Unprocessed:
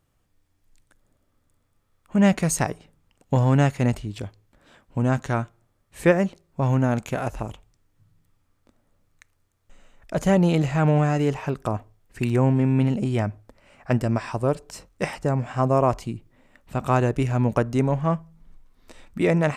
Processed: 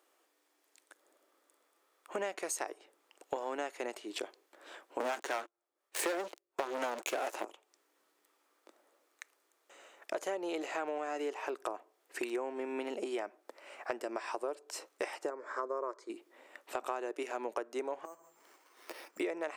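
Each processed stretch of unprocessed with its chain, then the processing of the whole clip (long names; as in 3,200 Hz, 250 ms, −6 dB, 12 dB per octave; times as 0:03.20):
0:05.00–0:07.45: two-band tremolo in antiphase 4.1 Hz, depth 50%, crossover 460 Hz + leveller curve on the samples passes 5
0:15.30–0:16.10: high-frequency loss of the air 89 metres + phaser with its sweep stopped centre 750 Hz, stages 6
0:18.05–0:19.20: downward compressor 10 to 1, threshold −38 dBFS + bad sample-rate conversion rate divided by 6×, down filtered, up hold + one half of a high-frequency compander encoder only
whole clip: elliptic high-pass filter 340 Hz, stop band 70 dB; downward compressor 6 to 1, threshold −39 dBFS; level +4 dB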